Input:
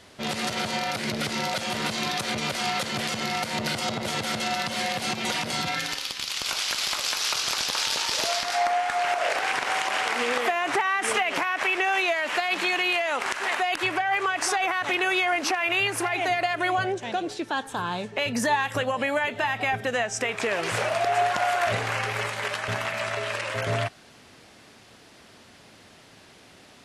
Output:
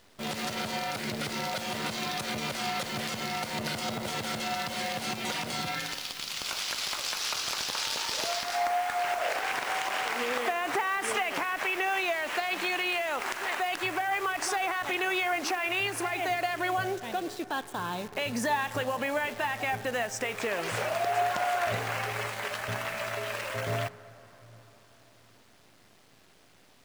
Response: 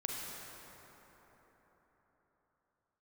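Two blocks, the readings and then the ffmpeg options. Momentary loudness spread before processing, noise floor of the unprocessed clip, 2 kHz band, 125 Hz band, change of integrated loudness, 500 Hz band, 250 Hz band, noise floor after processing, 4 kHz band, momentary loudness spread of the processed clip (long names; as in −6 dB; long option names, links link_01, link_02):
5 LU, −52 dBFS, −5.5 dB, −4.5 dB, −5.0 dB, −4.5 dB, −4.5 dB, −59 dBFS, −5.5 dB, 5 LU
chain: -filter_complex "[0:a]acrusher=bits=7:dc=4:mix=0:aa=0.000001,asplit=2[link_01][link_02];[1:a]atrim=start_sample=2205,lowpass=2100[link_03];[link_02][link_03]afir=irnorm=-1:irlink=0,volume=-15.5dB[link_04];[link_01][link_04]amix=inputs=2:normalize=0,volume=-5.5dB"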